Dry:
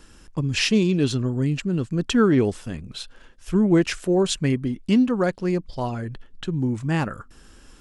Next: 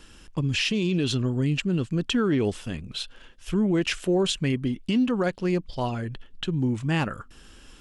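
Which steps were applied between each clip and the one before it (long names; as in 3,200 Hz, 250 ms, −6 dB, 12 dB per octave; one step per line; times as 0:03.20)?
parametric band 3,000 Hz +7 dB 0.77 octaves
brickwall limiter −15 dBFS, peak gain reduction 9.5 dB
level −1 dB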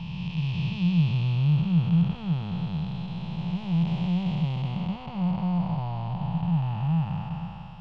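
spectrum smeared in time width 1,060 ms
drawn EQ curve 110 Hz 0 dB, 170 Hz +9 dB, 250 Hz −20 dB, 410 Hz −20 dB, 870 Hz +9 dB, 1,600 Hz −15 dB, 2,600 Hz −4 dB, 4,500 Hz −8 dB, 8,300 Hz −30 dB, 12,000 Hz −26 dB
level +4 dB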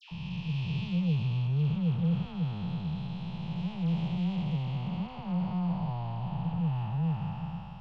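soft clipping −18.5 dBFS, distortion −18 dB
all-pass dispersion lows, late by 114 ms, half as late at 1,400 Hz
level −3.5 dB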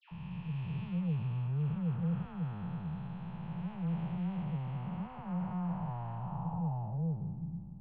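low-pass filter sweep 1,600 Hz → 300 Hz, 0:06.14–0:07.47
level −5.5 dB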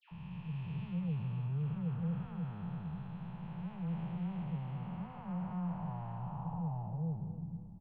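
repeating echo 280 ms, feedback 37%, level −12 dB
level −3 dB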